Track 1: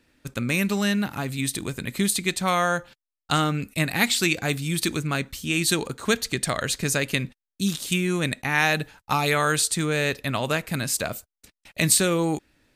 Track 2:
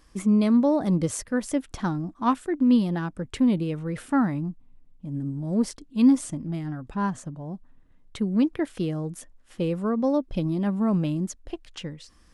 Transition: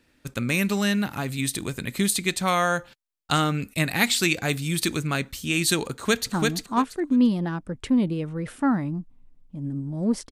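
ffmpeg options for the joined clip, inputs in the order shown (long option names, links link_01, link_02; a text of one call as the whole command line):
ffmpeg -i cue0.wav -i cue1.wav -filter_complex "[0:a]apad=whole_dur=10.31,atrim=end=10.31,atrim=end=6.322[link_01];[1:a]atrim=start=1.818:end=5.81[link_02];[link_01][link_02]acrossfade=duration=0.004:curve1=hsin:curve2=hsin,asplit=2[link_03][link_04];[link_04]afade=type=in:start_time=5.92:duration=0.01,afade=type=out:start_time=6.32:duration=0.01,aecho=0:1:340|680|1020:0.749894|0.149979|0.0299958[link_05];[link_03][link_05]amix=inputs=2:normalize=0" out.wav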